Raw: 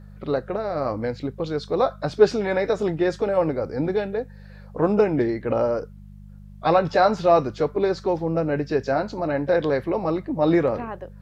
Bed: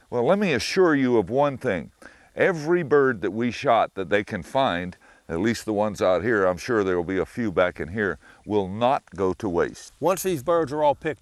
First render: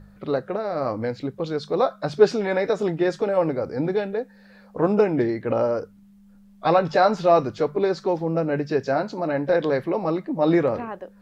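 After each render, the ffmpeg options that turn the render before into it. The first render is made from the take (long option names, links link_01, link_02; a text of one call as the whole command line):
ffmpeg -i in.wav -af "bandreject=frequency=50:width_type=h:width=4,bandreject=frequency=100:width_type=h:width=4,bandreject=frequency=150:width_type=h:width=4" out.wav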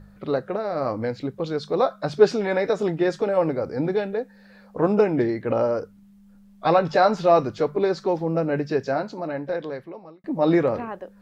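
ffmpeg -i in.wav -filter_complex "[0:a]asplit=2[link_01][link_02];[link_01]atrim=end=10.24,asetpts=PTS-STARTPTS,afade=type=out:start_time=8.64:duration=1.6[link_03];[link_02]atrim=start=10.24,asetpts=PTS-STARTPTS,afade=type=in:duration=0.004:curve=hsin[link_04];[link_03][link_04]concat=n=2:v=0:a=1" out.wav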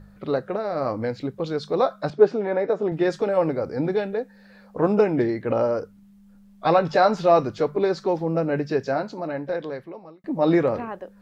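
ffmpeg -i in.wav -filter_complex "[0:a]asettb=1/sr,asplit=3[link_01][link_02][link_03];[link_01]atrim=end=2.104[link_04];[link_02]atrim=start=2.1:end=2.92,asetpts=PTS-STARTPTS,afade=type=in:duration=0.004:curve=qsin,afade=type=out:start_time=0.816:duration=0.004:curve=qsin,bandpass=frequency=480:width_type=q:width=0.52[link_05];[link_03]atrim=start=2.916[link_06];[link_04][link_05]acrossfade=duration=0.004:curve1=hsin:curve2=qsin[link_07];[link_07][link_06]acrossfade=duration=0.004:curve1=qsin:curve2=hsin" out.wav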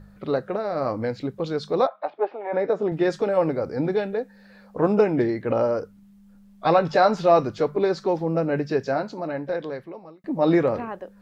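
ffmpeg -i in.wav -filter_complex "[0:a]asplit=3[link_01][link_02][link_03];[link_01]afade=type=out:start_time=1.86:duration=0.02[link_04];[link_02]highpass=frequency=420:width=0.5412,highpass=frequency=420:width=1.3066,equalizer=frequency=440:width_type=q:width=4:gain=-9,equalizer=frequency=830:width_type=q:width=4:gain=6,equalizer=frequency=1500:width_type=q:width=4:gain=-9,lowpass=frequency=2700:width=0.5412,lowpass=frequency=2700:width=1.3066,afade=type=in:start_time=1.86:duration=0.02,afade=type=out:start_time=2.52:duration=0.02[link_05];[link_03]afade=type=in:start_time=2.52:duration=0.02[link_06];[link_04][link_05][link_06]amix=inputs=3:normalize=0" out.wav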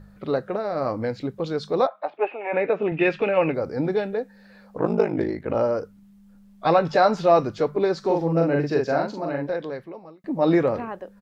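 ffmpeg -i in.wav -filter_complex "[0:a]asettb=1/sr,asplit=3[link_01][link_02][link_03];[link_01]atrim=end=2.174[link_04];[link_02]atrim=start=2.17:end=3.54,asetpts=PTS-STARTPTS,afade=type=in:duration=0.004:curve=qsin,afade=type=out:start_time=1.366:duration=0.004:curve=qsin,lowpass=frequency=2600:width_type=q:width=11[link_05];[link_03]atrim=start=3.536[link_06];[link_04][link_05]acrossfade=duration=0.004:curve1=hsin:curve2=qsin[link_07];[link_07][link_06]acrossfade=duration=0.004:curve1=qsin:curve2=hsin,asettb=1/sr,asplit=3[link_08][link_09][link_10];[link_08]atrim=end=4.784[link_11];[link_09]atrim=start=4.78:end=5.55,asetpts=PTS-STARTPTS,afade=type=in:duration=0.004:curve=qsin,afade=type=out:start_time=0.766:duration=0.004:curve=qsin,aeval=exprs='val(0)*sin(2*PI*26*n/s)':channel_layout=same[link_12];[link_10]atrim=start=5.546[link_13];[link_11][link_12]acrossfade=duration=0.004:curve1=hsin:curve2=qsin[link_14];[link_14][link_13]acrossfade=duration=0.004:curve1=qsin:curve2=hsin,asplit=3[link_15][link_16][link_17];[link_15]afade=type=out:start_time=8.03:duration=0.02[link_18];[link_16]asplit=2[link_19][link_20];[link_20]adelay=42,volume=-2.5dB[link_21];[link_19][link_21]amix=inputs=2:normalize=0,afade=type=in:start_time=8.03:duration=0.02,afade=type=out:start_time=9.46:duration=0.02[link_22];[link_17]afade=type=in:start_time=9.46:duration=0.02[link_23];[link_18][link_22][link_23]amix=inputs=3:normalize=0" out.wav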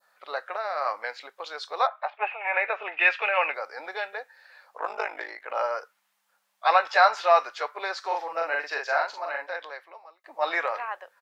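ffmpeg -i in.wav -af "highpass=frequency=730:width=0.5412,highpass=frequency=730:width=1.3066,adynamicequalizer=threshold=0.01:dfrequency=1900:dqfactor=0.75:tfrequency=1900:tqfactor=0.75:attack=5:release=100:ratio=0.375:range=3.5:mode=boostabove:tftype=bell" out.wav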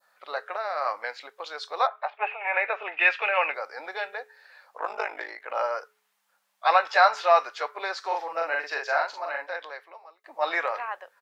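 ffmpeg -i in.wav -af "bandreject=frequency=213.6:width_type=h:width=4,bandreject=frequency=427.2:width_type=h:width=4" out.wav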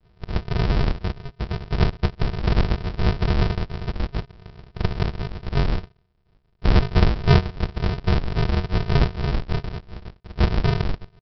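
ffmpeg -i in.wav -filter_complex "[0:a]asplit=2[link_01][link_02];[link_02]highpass=frequency=720:poles=1,volume=21dB,asoftclip=type=tanh:threshold=-5.5dB[link_03];[link_01][link_03]amix=inputs=2:normalize=0,lowpass=frequency=1600:poles=1,volume=-6dB,aresample=11025,acrusher=samples=40:mix=1:aa=0.000001,aresample=44100" out.wav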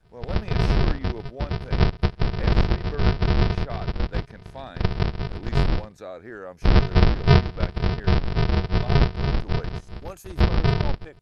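ffmpeg -i in.wav -i bed.wav -filter_complex "[1:a]volume=-17dB[link_01];[0:a][link_01]amix=inputs=2:normalize=0" out.wav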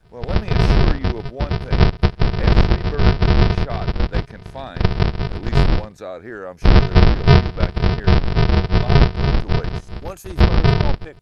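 ffmpeg -i in.wav -af "volume=6dB,alimiter=limit=-2dB:level=0:latency=1" out.wav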